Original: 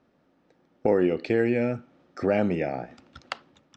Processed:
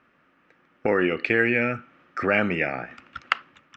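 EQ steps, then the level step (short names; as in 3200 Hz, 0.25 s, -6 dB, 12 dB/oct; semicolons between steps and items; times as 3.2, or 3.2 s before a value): band shelf 1800 Hz +13.5 dB; -1.0 dB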